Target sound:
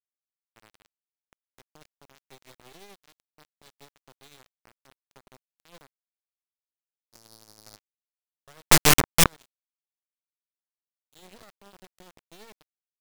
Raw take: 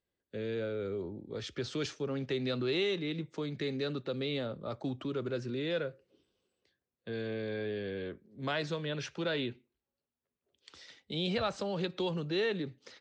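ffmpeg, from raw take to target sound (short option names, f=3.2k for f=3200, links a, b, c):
-filter_complex "[0:a]acrusher=bits=4:mix=0:aa=0.000001,asplit=3[a][b][c];[a]afade=t=out:st=8.71:d=0.02[d];[b]equalizer=f=1k:t=o:w=2.1:g=15,afade=t=in:st=8.71:d=0.02,afade=t=out:st=9.24:d=0.02[e];[c]afade=t=in:st=9.24:d=0.02[f];[d][e][f]amix=inputs=3:normalize=0,aeval=exprs='(mod(29.9*val(0)+1,2)-1)/29.9':c=same,asplit=3[g][h][i];[g]afade=t=out:st=7.12:d=0.02[j];[h]highshelf=f=3.2k:t=q:w=3:g=13.5,afade=t=in:st=7.12:d=0.02,afade=t=out:st=7.75:d=0.02[k];[i]afade=t=in:st=7.75:d=0.02[l];[j][k][l]amix=inputs=3:normalize=0,aeval=exprs='max(val(0),0)':c=same,tremolo=f=12:d=0.41,alimiter=level_in=35.5dB:limit=-1dB:release=50:level=0:latency=1,volume=-2dB"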